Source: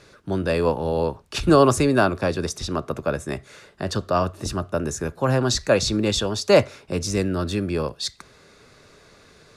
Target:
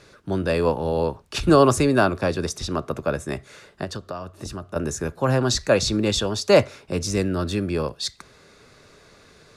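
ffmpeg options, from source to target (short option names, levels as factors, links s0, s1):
-filter_complex "[0:a]asettb=1/sr,asplit=3[s0][s1][s2];[s0]atrim=end=3.844[s3];[s1]atrim=start=3.84:end=4.76,asetpts=PTS-STARTPTS,afade=t=in:d=0.004:c=qsin,afade=t=out:st=0.916:d=0.004:c=qsin,acompressor=threshold=0.0355:ratio=12[s4];[s2]atrim=start=4.756[s5];[s3][s4]acrossfade=d=0.004:c1=hsin:c2=qsin[s6];[s6][s5]acrossfade=d=0.004:c1=qsin:c2=hsin"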